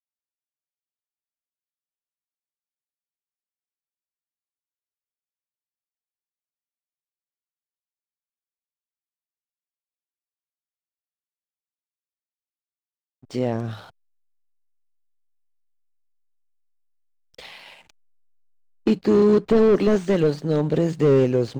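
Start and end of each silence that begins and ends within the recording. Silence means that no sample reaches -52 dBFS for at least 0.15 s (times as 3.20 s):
13.90–17.34 s
17.90–18.86 s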